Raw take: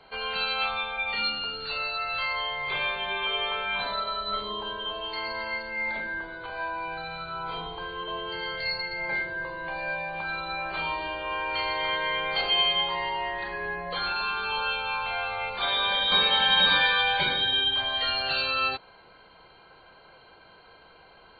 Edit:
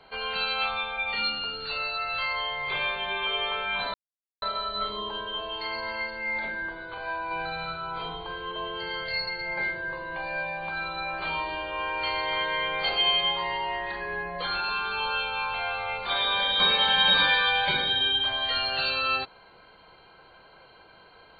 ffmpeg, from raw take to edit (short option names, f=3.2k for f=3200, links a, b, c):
-filter_complex "[0:a]asplit=4[a][b][c][d];[a]atrim=end=3.94,asetpts=PTS-STARTPTS,afade=t=out:st=3.936:d=0.004:c=hsin,apad=pad_dur=0.48[e];[b]atrim=start=3.94:end=6.832,asetpts=PTS-STARTPTS,afade=t=in:d=0.004:c=hsin[f];[c]atrim=start=6.828:end=7.282,asetpts=PTS-STARTPTS,volume=3dB[g];[d]atrim=start=7.278[h];[e][f]concat=n=2:v=0:a=1[i];[i][g]acrossfade=d=0.004:c1=hsin:c2=hsin[j];[j][h]acrossfade=d=0.004:c1=hsin:c2=hsin"